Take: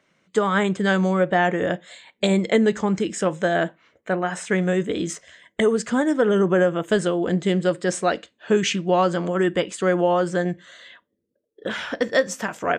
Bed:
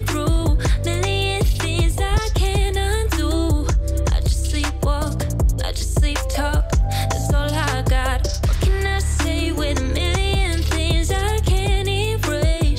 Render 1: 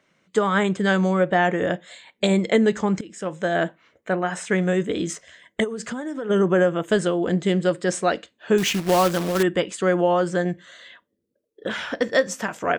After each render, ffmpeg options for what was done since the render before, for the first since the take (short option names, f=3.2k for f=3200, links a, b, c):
-filter_complex "[0:a]asplit=3[a][b][c];[a]afade=t=out:st=5.63:d=0.02[d];[b]acompressor=threshold=-25dB:ratio=16:attack=3.2:release=140:knee=1:detection=peak,afade=t=in:st=5.63:d=0.02,afade=t=out:st=6.29:d=0.02[e];[c]afade=t=in:st=6.29:d=0.02[f];[d][e][f]amix=inputs=3:normalize=0,asettb=1/sr,asplit=3[g][h][i];[g]atrim=end=8.584[j];[h]atrim=start=8.58:end=9.43,asetpts=PTS-STARTPTS,afade=t=in:d=0.004:c=qsin,afade=t=out:st=0.846:d=0.004:c=qsin,acrusher=bits=2:mode=log:mix=0:aa=0.000001[k];[i]atrim=start=9.426[l];[j][k]acrossfade=d=0.004:c1=hsin:c2=qsin[m];[m][l]acrossfade=d=0.004:c1=qsin:c2=hsin,asplit=2[n][o];[n]atrim=end=3.01,asetpts=PTS-STARTPTS,afade=t=out:st=3.006:d=0.004:c=hsin:silence=0.112202[p];[o]atrim=start=3.01,asetpts=PTS-STARTPTS,afade=t=in:d=0.62:silence=0.112202[q];[p][q]concat=n=2:v=0:a=1"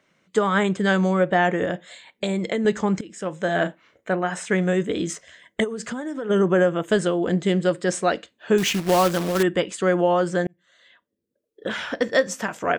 -filter_complex "[0:a]asettb=1/sr,asplit=3[a][b][c];[a]atrim=end=1.644[d];[b]atrim=start=1.64:end=2.65,asetpts=PTS-STARTPTS,afade=t=in:d=0.004:c=qsin,afade=t=out:st=1.006:d=0.004:c=qsin,acompressor=threshold=-20dB:ratio=6:attack=3.2:release=140:knee=1:detection=peak[e];[c]atrim=start=2.646[f];[d][e]acrossfade=d=0.004:c1=hsin:c2=qsin[g];[g][f]acrossfade=d=0.004:c1=qsin:c2=hsin,asettb=1/sr,asplit=3[h][i][j];[h]atrim=end=3.454[k];[i]atrim=start=3.45:end=4.11,asetpts=PTS-STARTPTS,afade=t=in:d=0.004:c=qsin,afade=t=out:st=0.656:d=0.004:c=qsin,asplit=2[l][m];[m]adelay=34,volume=-8dB[n];[l][n]amix=inputs=2:normalize=0,atrim=end_sample=29106[o];[j]atrim=start=4.106[p];[k][o]acrossfade=d=0.004:c1=hsin:c2=qsin[q];[q][p]acrossfade=d=0.004:c1=qsin:c2=hsin,asplit=2[r][s];[r]atrim=end=10.47,asetpts=PTS-STARTPTS,afade=t=out:st=10.466:d=0.004:c=hsin[t];[s]atrim=start=10.47,asetpts=PTS-STARTPTS,afade=t=in:d=1.22[u];[t][u]concat=n=2:v=0:a=1"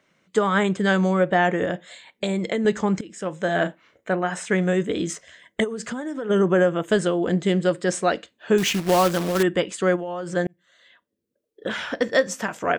-filter_complex "[0:a]asplit=3[a][b][c];[a]afade=t=out:st=9.95:d=0.02[d];[b]acompressor=threshold=-26dB:ratio=10:attack=3.2:release=140:knee=1:detection=peak,afade=t=in:st=9.95:d=0.02,afade=t=out:st=10.35:d=0.02[e];[c]afade=t=in:st=10.35:d=0.02[f];[d][e][f]amix=inputs=3:normalize=0"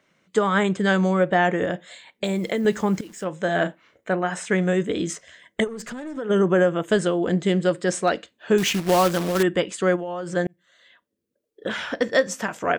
-filter_complex "[0:a]asettb=1/sr,asplit=3[a][b][c];[a]atrim=end=2.244[d];[b]atrim=start=2.24:end=3.24,asetpts=PTS-STARTPTS,afade=t=in:d=0.004:c=qsin,afade=t=out:st=0.996:d=0.004:c=qsin,acrusher=bits=9:dc=4:mix=0:aa=0.000001[e];[c]atrim=start=3.236[f];[d][e]acrossfade=d=0.004:c1=hsin:c2=qsin[g];[g][f]acrossfade=d=0.004:c1=qsin:c2=hsin,asettb=1/sr,asplit=3[h][i][j];[h]atrim=end=5.674[k];[i]atrim=start=5.67:end=6.17,asetpts=PTS-STARTPTS,afade=t=in:d=0.004:c=qsin,afade=t=out:st=0.496:d=0.004:c=qsin,aeval=exprs='(tanh(28.2*val(0)+0.3)-tanh(0.3))/28.2':c=same[l];[j]atrim=start=6.166[m];[k][l]acrossfade=d=0.004:c1=hsin:c2=qsin[n];[n][m]acrossfade=d=0.004:c1=qsin:c2=hsin,asplit=3[o][p][q];[o]afade=t=out:st=7.83:d=0.02[r];[p]asoftclip=type=hard:threshold=-11dB,afade=t=in:st=7.83:d=0.02,afade=t=out:st=8.51:d=0.02[s];[q]afade=t=in:st=8.51:d=0.02[t];[r][s][t]amix=inputs=3:normalize=0"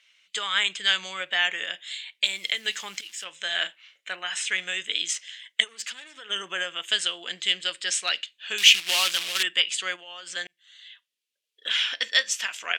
-af "crystalizer=i=9.5:c=0,bandpass=f=2.9k:t=q:w=2.5:csg=0"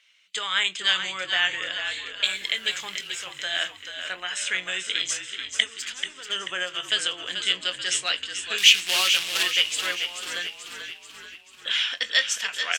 -filter_complex "[0:a]asplit=2[a][b];[b]adelay=22,volume=-13dB[c];[a][c]amix=inputs=2:normalize=0,asplit=7[d][e][f][g][h][i][j];[e]adelay=436,afreqshift=-50,volume=-8dB[k];[f]adelay=872,afreqshift=-100,volume=-13.5dB[l];[g]adelay=1308,afreqshift=-150,volume=-19dB[m];[h]adelay=1744,afreqshift=-200,volume=-24.5dB[n];[i]adelay=2180,afreqshift=-250,volume=-30.1dB[o];[j]adelay=2616,afreqshift=-300,volume=-35.6dB[p];[d][k][l][m][n][o][p]amix=inputs=7:normalize=0"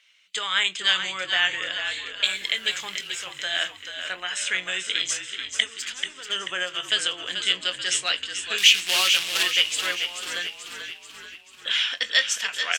-af "volume=1dB,alimiter=limit=-3dB:level=0:latency=1"